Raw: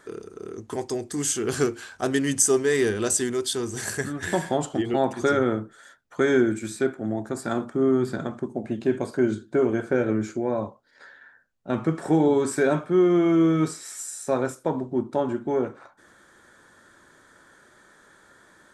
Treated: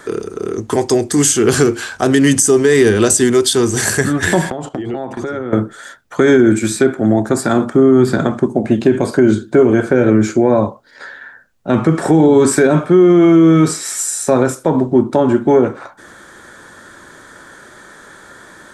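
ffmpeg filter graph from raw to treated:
-filter_complex "[0:a]asettb=1/sr,asplit=3[a][b][c];[a]atrim=end=4.504[d];[b]atrim=start=4.5:end=5.53,asetpts=PTS-STARTPTS,afade=t=in:d=0.004:c=qsin,afade=t=out:st=1.026:d=0.004:c=qsin,agate=range=-14dB:threshold=-37dB:ratio=16:release=100:detection=peak,highshelf=f=3.2k:g=-9.5,acompressor=threshold=-34dB:ratio=10:attack=3.2:release=140:knee=1:detection=peak[e];[c]atrim=start=5.526[f];[d][e]acrossfade=d=0.004:c1=hsin:c2=qsin[g];[g][f]acrossfade=d=0.004:c1=qsin:c2=hsin,acrossover=split=370[h][i];[i]acompressor=threshold=-27dB:ratio=2.5[j];[h][j]amix=inputs=2:normalize=0,alimiter=level_in=16.5dB:limit=-1dB:release=50:level=0:latency=1,volume=-1dB"

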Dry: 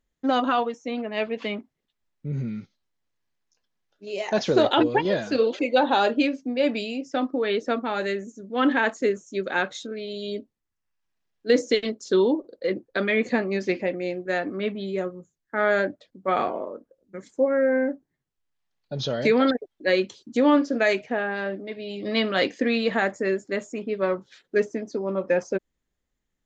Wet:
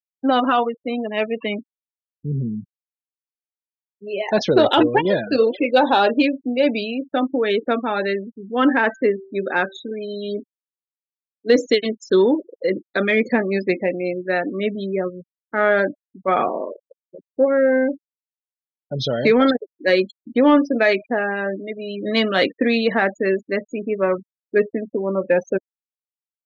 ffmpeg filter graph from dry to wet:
-filter_complex "[0:a]asettb=1/sr,asplit=3[a][b][c];[a]atrim=end=8.304[d];[b]atrim=start=8.3:end=11.51,asetpts=PTS-STARTPTS,afade=t=in:d=0.004:c=qsin,afade=t=out:st=3.206:d=0.004:c=qsin,highshelf=f=5.6k:g=-9.5,bandreject=f=387.9:t=h:w=4,bandreject=f=775.8:t=h:w=4,bandreject=f=1.1637k:t=h:w=4,bandreject=f=1.5516k:t=h:w=4,bandreject=f=1.9395k:t=h:w=4,bandreject=f=2.3274k:t=h:w=4[e];[c]atrim=start=11.506[f];[d][e]acrossfade=d=0.004:c1=hsin:c2=qsin[g];[g][f]acrossfade=d=0.004:c1=qsin:c2=hsin,asettb=1/sr,asplit=3[h][i][j];[h]atrim=end=16.724[k];[i]atrim=start=16.72:end=17.31,asetpts=PTS-STARTPTS,afade=t=in:d=0.004:c=qsin,afade=t=out:st=0.586:d=0.004:c=qsin,lowpass=f=640:t=q:w=3.5,acompressor=threshold=-34dB:ratio=20:attack=3.2:release=140:knee=1:detection=peak,tremolo=f=77:d=0.974[l];[j]atrim=start=17.306[m];[k][l]acrossfade=d=0.004:c1=hsin:c2=qsin[n];[n][m]acrossfade=d=0.004:c1=qsin:c2=hsin,afftfilt=real='re*gte(hypot(re,im),0.0251)':imag='im*gte(hypot(re,im),0.0251)':win_size=1024:overlap=0.75,acontrast=28"

